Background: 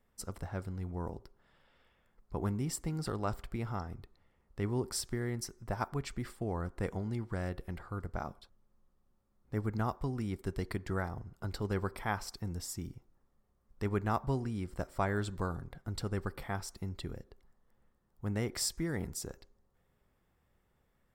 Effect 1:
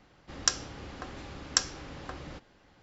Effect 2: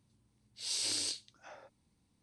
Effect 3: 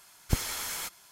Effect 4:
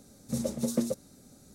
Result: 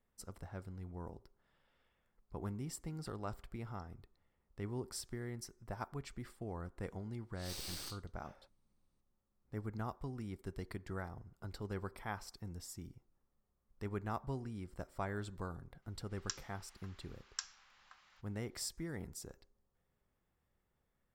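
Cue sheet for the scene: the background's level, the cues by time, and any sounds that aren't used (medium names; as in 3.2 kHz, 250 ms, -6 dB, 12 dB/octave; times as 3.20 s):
background -8 dB
6.79 s: add 2 -11 dB + tracing distortion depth 0.05 ms
15.82 s: add 1 -16 dB + high-pass 970 Hz 24 dB/octave
not used: 3, 4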